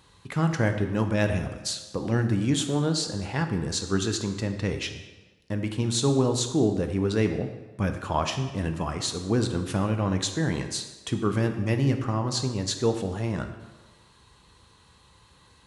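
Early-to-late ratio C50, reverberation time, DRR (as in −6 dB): 8.5 dB, 1.3 s, 6.0 dB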